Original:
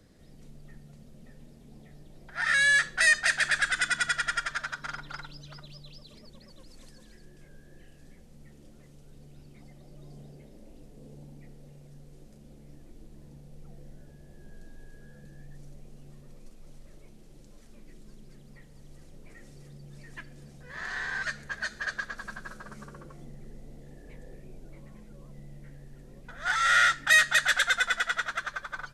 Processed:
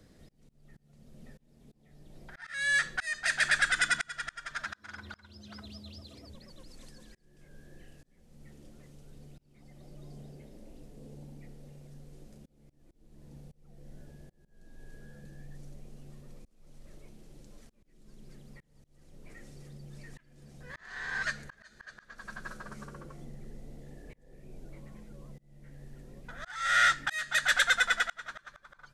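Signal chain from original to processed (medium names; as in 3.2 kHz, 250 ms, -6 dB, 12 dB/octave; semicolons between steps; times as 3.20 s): 4.65–6.34 s: frequency shift +64 Hz; slow attack 462 ms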